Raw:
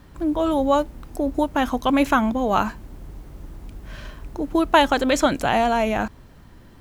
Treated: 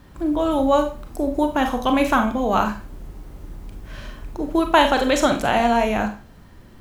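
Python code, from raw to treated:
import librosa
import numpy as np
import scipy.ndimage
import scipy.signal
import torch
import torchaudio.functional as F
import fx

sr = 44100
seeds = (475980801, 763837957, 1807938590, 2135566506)

y = fx.rev_schroeder(x, sr, rt60_s=0.35, comb_ms=30, drr_db=5.0)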